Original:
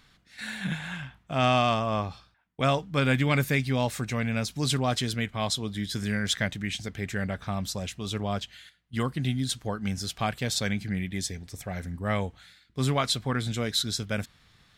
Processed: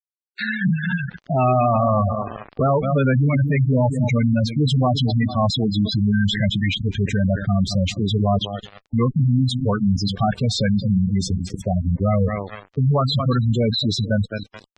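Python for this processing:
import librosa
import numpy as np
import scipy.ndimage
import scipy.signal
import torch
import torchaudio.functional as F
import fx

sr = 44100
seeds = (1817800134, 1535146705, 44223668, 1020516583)

y = fx.high_shelf(x, sr, hz=6800.0, db=8.5)
y = fx.echo_feedback(y, sr, ms=213, feedback_pct=50, wet_db=-12)
y = fx.fuzz(y, sr, gain_db=34.0, gate_db=-40.0)
y = fx.spec_gate(y, sr, threshold_db=-10, keep='strong')
y = fx.air_absorb(y, sr, metres=140.0)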